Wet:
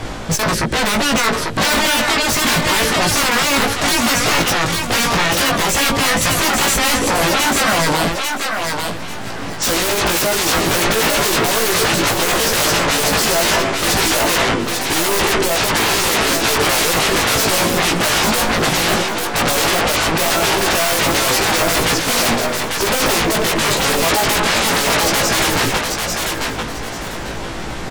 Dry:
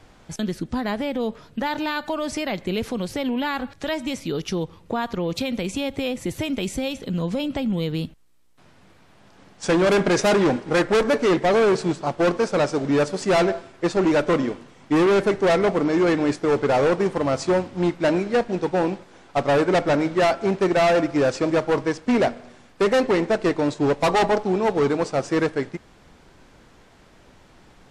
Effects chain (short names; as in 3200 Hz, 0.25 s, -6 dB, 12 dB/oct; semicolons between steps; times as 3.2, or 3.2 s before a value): sine folder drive 18 dB, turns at -15 dBFS; doubler 18 ms -3.5 dB; thinning echo 0.844 s, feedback 22%, high-pass 450 Hz, level -3.5 dB; reverse; upward compressor, threshold -20 dBFS; reverse